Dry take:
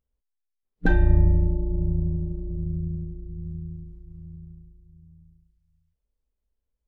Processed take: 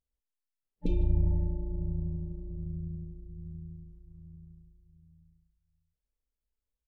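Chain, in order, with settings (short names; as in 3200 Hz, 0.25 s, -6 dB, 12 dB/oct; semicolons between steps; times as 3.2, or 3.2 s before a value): speakerphone echo 0.15 s, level -12 dB; spectral repair 0.85–1.39, 570–2100 Hz after; gain -8.5 dB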